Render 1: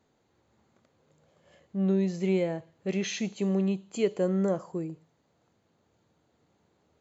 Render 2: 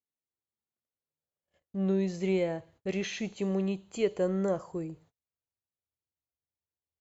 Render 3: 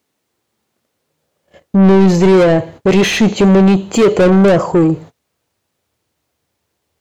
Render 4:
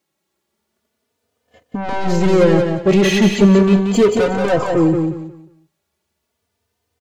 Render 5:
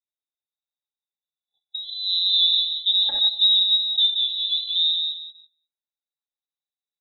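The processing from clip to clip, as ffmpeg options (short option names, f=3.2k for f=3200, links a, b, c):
-filter_complex "[0:a]agate=range=-34dB:threshold=-56dB:ratio=16:detection=peak,asubboost=boost=8.5:cutoff=67,acrossover=split=3100[a][b];[b]alimiter=level_in=10.5dB:limit=-24dB:level=0:latency=1:release=461,volume=-10.5dB[c];[a][c]amix=inputs=2:normalize=0"
-filter_complex "[0:a]lowshelf=f=430:g=11.5,asplit=2[a][b];[b]highpass=f=720:p=1,volume=29dB,asoftclip=type=tanh:threshold=-10dB[c];[a][c]amix=inputs=2:normalize=0,lowpass=f=6.3k:p=1,volume=-6dB,tiltshelf=f=740:g=3,volume=6.5dB"
-filter_complex "[0:a]asplit=2[a][b];[b]aecho=0:1:180|360|540|720:0.531|0.143|0.0387|0.0104[c];[a][c]amix=inputs=2:normalize=0,asplit=2[d][e];[e]adelay=3.2,afreqshift=0.37[f];[d][f]amix=inputs=2:normalize=1,volume=-1.5dB"
-af "afftfilt=real='re*(1-between(b*sr/4096,580,3100))':imag='im*(1-between(b*sr/4096,580,3100))':win_size=4096:overlap=0.75,afwtdn=0.0501,lowpass=f=3.4k:t=q:w=0.5098,lowpass=f=3.4k:t=q:w=0.6013,lowpass=f=3.4k:t=q:w=0.9,lowpass=f=3.4k:t=q:w=2.563,afreqshift=-4000,volume=-7.5dB"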